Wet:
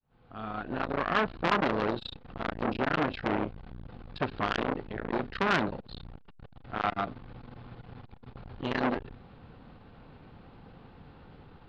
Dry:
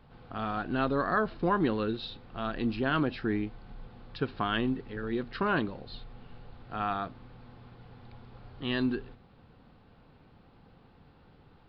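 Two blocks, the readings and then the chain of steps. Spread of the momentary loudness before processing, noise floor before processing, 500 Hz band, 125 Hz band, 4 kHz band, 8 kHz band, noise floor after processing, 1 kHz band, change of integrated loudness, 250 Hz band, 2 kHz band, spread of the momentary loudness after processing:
20 LU, -59 dBFS, +0.5 dB, -1.5 dB, +0.5 dB, n/a, -54 dBFS, +2.0 dB, 0.0 dB, -2.5 dB, +2.0 dB, 21 LU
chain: opening faded in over 1.42 s; LPF 4200 Hz 12 dB/oct; core saturation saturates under 2100 Hz; gain +7 dB

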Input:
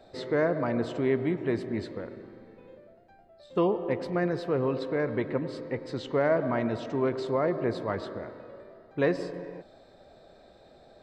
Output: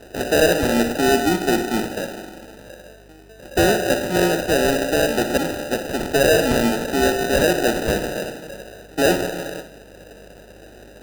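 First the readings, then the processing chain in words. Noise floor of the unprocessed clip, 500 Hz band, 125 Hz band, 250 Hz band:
-56 dBFS, +9.0 dB, +6.0 dB, +9.0 dB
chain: steep high-pass 170 Hz 72 dB/oct; high shelf 2600 Hz +10 dB; hum 50 Hz, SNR 33 dB; sine folder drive 4 dB, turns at -12 dBFS; sample-and-hold 40×; on a send: flutter echo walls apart 10.2 m, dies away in 0.35 s; on the sum: gain +2 dB

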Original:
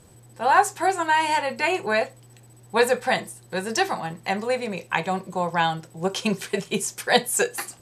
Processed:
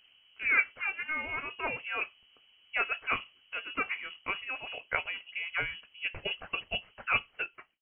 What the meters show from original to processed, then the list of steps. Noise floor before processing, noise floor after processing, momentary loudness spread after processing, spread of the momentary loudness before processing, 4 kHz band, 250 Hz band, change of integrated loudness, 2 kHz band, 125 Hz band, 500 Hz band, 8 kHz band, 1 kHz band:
-51 dBFS, -65 dBFS, 9 LU, 8 LU, -8.5 dB, -21.0 dB, -9.0 dB, -4.5 dB, -18.0 dB, -20.0 dB, under -40 dB, -16.5 dB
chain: ending faded out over 0.75 s; harmonic-percussive split harmonic -8 dB; inverted band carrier 3100 Hz; gain -6.5 dB

